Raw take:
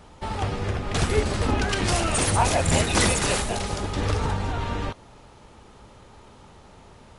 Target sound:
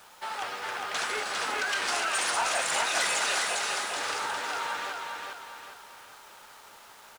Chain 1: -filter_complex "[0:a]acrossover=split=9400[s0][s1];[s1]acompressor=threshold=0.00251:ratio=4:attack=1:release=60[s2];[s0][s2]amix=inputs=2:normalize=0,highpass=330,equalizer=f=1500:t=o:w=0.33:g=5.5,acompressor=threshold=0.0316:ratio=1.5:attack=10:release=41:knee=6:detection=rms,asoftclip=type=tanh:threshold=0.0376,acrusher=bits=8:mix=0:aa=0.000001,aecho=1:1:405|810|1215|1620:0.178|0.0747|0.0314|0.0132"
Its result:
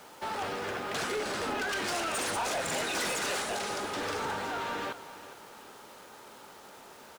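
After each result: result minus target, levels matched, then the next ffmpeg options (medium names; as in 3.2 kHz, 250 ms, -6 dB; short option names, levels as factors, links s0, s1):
250 Hz band +12.5 dB; echo-to-direct -11.5 dB; saturation: distortion +10 dB
-filter_complex "[0:a]acrossover=split=9400[s0][s1];[s1]acompressor=threshold=0.00251:ratio=4:attack=1:release=60[s2];[s0][s2]amix=inputs=2:normalize=0,highpass=860,equalizer=f=1500:t=o:w=0.33:g=5.5,acompressor=threshold=0.0316:ratio=1.5:attack=10:release=41:knee=6:detection=rms,asoftclip=type=tanh:threshold=0.0376,acrusher=bits=8:mix=0:aa=0.000001,aecho=1:1:405|810|1215|1620:0.178|0.0747|0.0314|0.0132"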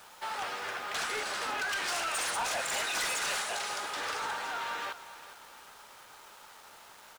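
echo-to-direct -11.5 dB; saturation: distortion +10 dB
-filter_complex "[0:a]acrossover=split=9400[s0][s1];[s1]acompressor=threshold=0.00251:ratio=4:attack=1:release=60[s2];[s0][s2]amix=inputs=2:normalize=0,highpass=860,equalizer=f=1500:t=o:w=0.33:g=5.5,acompressor=threshold=0.0316:ratio=1.5:attack=10:release=41:knee=6:detection=rms,asoftclip=type=tanh:threshold=0.0376,acrusher=bits=8:mix=0:aa=0.000001,aecho=1:1:405|810|1215|1620|2025:0.668|0.281|0.118|0.0495|0.0208"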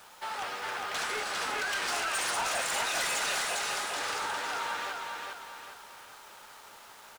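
saturation: distortion +10 dB
-filter_complex "[0:a]acrossover=split=9400[s0][s1];[s1]acompressor=threshold=0.00251:ratio=4:attack=1:release=60[s2];[s0][s2]amix=inputs=2:normalize=0,highpass=860,equalizer=f=1500:t=o:w=0.33:g=5.5,acompressor=threshold=0.0316:ratio=1.5:attack=10:release=41:knee=6:detection=rms,asoftclip=type=tanh:threshold=0.1,acrusher=bits=8:mix=0:aa=0.000001,aecho=1:1:405|810|1215|1620|2025:0.668|0.281|0.118|0.0495|0.0208"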